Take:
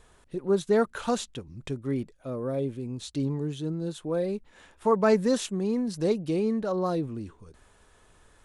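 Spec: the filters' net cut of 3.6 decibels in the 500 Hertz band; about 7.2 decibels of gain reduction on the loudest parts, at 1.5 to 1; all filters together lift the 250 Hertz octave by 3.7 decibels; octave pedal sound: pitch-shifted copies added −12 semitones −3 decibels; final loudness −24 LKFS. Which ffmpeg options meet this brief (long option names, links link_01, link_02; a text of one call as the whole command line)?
ffmpeg -i in.wav -filter_complex "[0:a]equalizer=frequency=250:width_type=o:gain=6,equalizer=frequency=500:width_type=o:gain=-6.5,acompressor=threshold=-38dB:ratio=1.5,asplit=2[link_01][link_02];[link_02]asetrate=22050,aresample=44100,atempo=2,volume=-3dB[link_03];[link_01][link_03]amix=inputs=2:normalize=0,volume=8.5dB" out.wav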